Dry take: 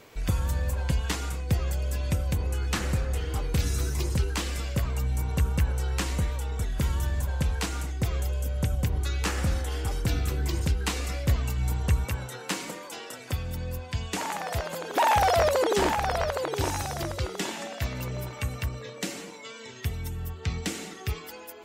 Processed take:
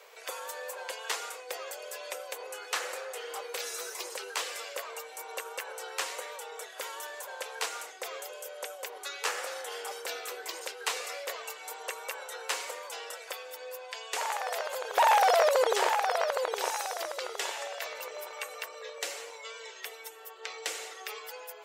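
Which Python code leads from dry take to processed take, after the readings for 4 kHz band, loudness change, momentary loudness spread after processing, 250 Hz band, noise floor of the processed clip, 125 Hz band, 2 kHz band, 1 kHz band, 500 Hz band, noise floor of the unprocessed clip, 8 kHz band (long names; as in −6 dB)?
−1.0 dB, −4.5 dB, 14 LU, −23.0 dB, −48 dBFS, below −40 dB, −0.5 dB, −0.5 dB, −1.5 dB, −43 dBFS, −1.0 dB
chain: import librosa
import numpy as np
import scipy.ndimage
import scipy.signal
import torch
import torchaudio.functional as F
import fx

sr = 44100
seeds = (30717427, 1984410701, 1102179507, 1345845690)

y = scipy.signal.sosfilt(scipy.signal.ellip(4, 1.0, 60, 460.0, 'highpass', fs=sr, output='sos'), x)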